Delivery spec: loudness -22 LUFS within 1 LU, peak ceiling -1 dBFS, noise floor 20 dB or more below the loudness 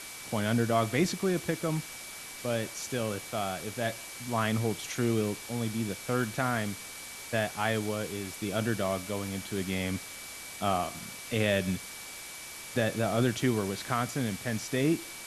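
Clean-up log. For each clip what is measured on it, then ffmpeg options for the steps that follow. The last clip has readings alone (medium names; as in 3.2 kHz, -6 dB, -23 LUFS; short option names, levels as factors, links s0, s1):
steady tone 2.3 kHz; tone level -48 dBFS; noise floor -44 dBFS; noise floor target -52 dBFS; loudness -31.5 LUFS; peak level -12.5 dBFS; loudness target -22.0 LUFS
-> -af "bandreject=f=2300:w=30"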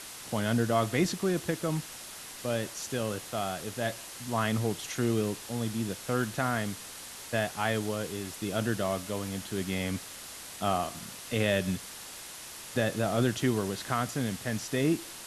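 steady tone not found; noise floor -44 dBFS; noise floor target -52 dBFS
-> -af "afftdn=nr=8:nf=-44"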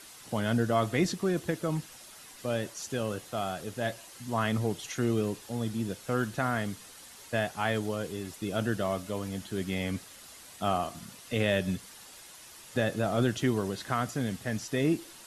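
noise floor -50 dBFS; noise floor target -52 dBFS
-> -af "afftdn=nr=6:nf=-50"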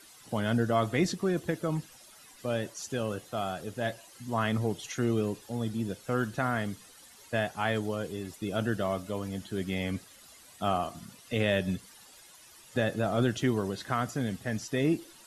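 noise floor -54 dBFS; loudness -31.5 LUFS; peak level -13.0 dBFS; loudness target -22.0 LUFS
-> -af "volume=2.99"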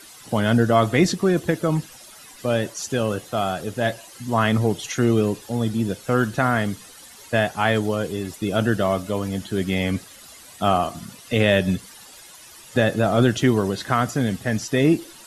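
loudness -22.0 LUFS; peak level -3.5 dBFS; noise floor -45 dBFS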